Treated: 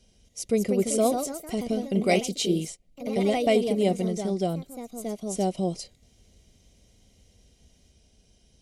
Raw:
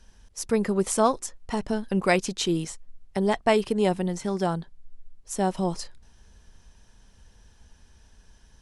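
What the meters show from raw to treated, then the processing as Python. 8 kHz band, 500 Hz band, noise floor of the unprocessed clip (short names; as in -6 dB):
0.0 dB, +0.5 dB, -57 dBFS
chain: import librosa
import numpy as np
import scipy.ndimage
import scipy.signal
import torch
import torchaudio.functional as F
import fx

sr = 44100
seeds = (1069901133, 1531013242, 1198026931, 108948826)

y = fx.echo_pitch(x, sr, ms=247, semitones=2, count=3, db_per_echo=-6.0)
y = fx.band_shelf(y, sr, hz=1300.0, db=-14.5, octaves=1.1)
y = fx.notch_comb(y, sr, f0_hz=870.0)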